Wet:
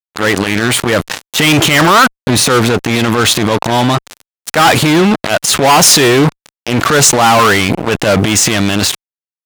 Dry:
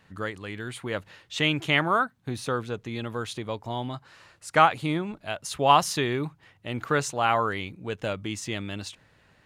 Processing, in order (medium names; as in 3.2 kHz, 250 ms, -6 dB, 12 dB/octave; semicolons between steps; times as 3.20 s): dynamic bell 7.1 kHz, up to +3 dB, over -47 dBFS, Q 1.5; transient shaper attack -12 dB, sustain +5 dB; fuzz box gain 34 dB, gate -40 dBFS; bass shelf 85 Hz -11 dB; loudness maximiser +17.5 dB; trim -1 dB